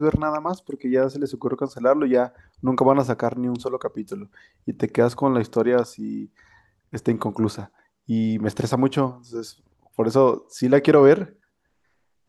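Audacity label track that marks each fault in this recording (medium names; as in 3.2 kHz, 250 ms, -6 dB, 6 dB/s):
10.590000	10.590000	dropout 4.5 ms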